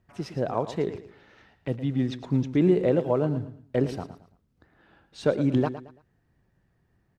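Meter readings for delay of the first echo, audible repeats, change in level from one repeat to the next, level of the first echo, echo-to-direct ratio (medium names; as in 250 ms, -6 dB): 112 ms, 3, -10.0 dB, -12.5 dB, -12.0 dB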